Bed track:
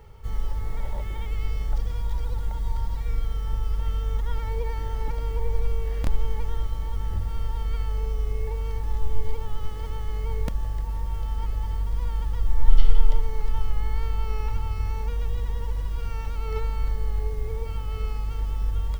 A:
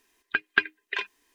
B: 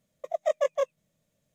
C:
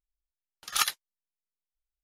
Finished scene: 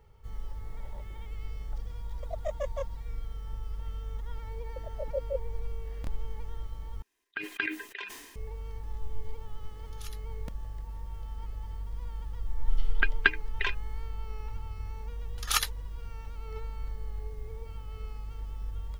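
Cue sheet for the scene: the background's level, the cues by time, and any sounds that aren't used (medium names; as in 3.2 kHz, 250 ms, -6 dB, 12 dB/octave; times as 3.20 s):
bed track -11 dB
1.99 s: add B -9 dB
4.52 s: add B -1 dB + Chebyshev band-pass 130–520 Hz, order 4
7.02 s: replace with A -11 dB + decay stretcher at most 49 dB/s
9.25 s: add C -15 dB + amplifier tone stack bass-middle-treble 5-5-5
12.68 s: add A -1 dB
14.75 s: add C -1 dB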